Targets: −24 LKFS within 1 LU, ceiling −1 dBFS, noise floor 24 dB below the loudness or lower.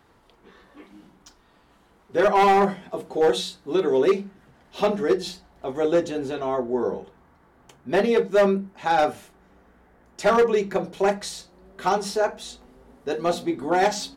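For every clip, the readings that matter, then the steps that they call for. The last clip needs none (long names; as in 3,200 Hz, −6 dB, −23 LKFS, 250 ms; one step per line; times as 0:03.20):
share of clipped samples 1.3%; peaks flattened at −13.0 dBFS; integrated loudness −23.0 LKFS; sample peak −13.0 dBFS; target loudness −24.0 LKFS
→ clipped peaks rebuilt −13 dBFS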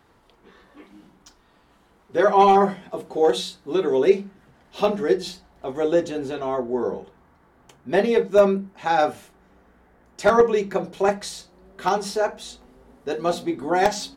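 share of clipped samples 0.0%; integrated loudness −22.0 LKFS; sample peak −4.0 dBFS; target loudness −24.0 LKFS
→ level −2 dB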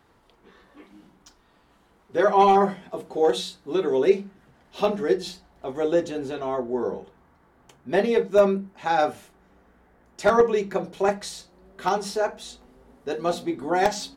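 integrated loudness −24.0 LKFS; sample peak −6.0 dBFS; background noise floor −60 dBFS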